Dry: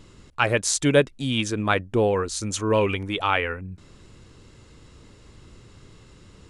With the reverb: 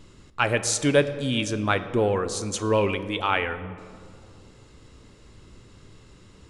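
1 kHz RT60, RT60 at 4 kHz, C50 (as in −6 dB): 2.3 s, 1.1 s, 12.5 dB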